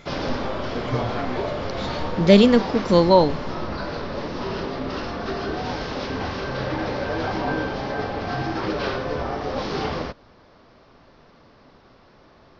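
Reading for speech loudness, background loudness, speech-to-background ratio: −17.0 LKFS, −28.0 LKFS, 11.0 dB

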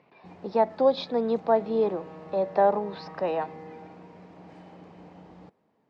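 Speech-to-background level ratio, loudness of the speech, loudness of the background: 19.5 dB, −26.5 LKFS, −46.0 LKFS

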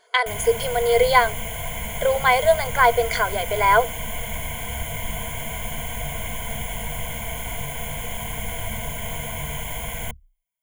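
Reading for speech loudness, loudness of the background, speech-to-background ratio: −19.5 LKFS, −29.5 LKFS, 10.0 dB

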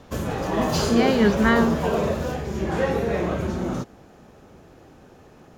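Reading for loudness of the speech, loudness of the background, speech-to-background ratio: −21.5 LKFS, −24.5 LKFS, 3.0 dB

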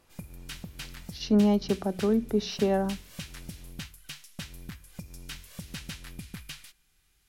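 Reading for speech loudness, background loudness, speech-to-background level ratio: −26.5 LKFS, −43.0 LKFS, 16.5 dB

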